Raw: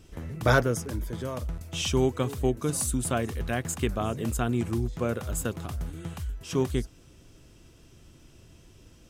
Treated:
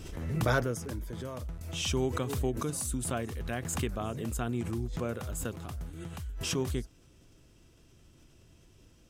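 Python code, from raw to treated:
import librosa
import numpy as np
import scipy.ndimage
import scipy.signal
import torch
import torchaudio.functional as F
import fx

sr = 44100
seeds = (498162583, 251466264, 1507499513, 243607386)

y = fx.pre_swell(x, sr, db_per_s=40.0)
y = y * 10.0 ** (-6.5 / 20.0)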